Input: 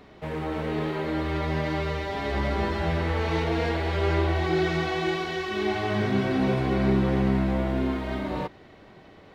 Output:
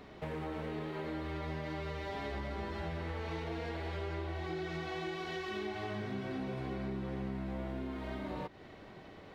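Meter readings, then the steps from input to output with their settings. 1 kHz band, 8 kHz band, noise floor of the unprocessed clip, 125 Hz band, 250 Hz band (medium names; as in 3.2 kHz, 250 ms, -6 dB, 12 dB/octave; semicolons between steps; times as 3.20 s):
-12.5 dB, no reading, -51 dBFS, -13.5 dB, -14.0 dB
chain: compression 6:1, threshold -35 dBFS, peak gain reduction 15.5 dB; trim -2 dB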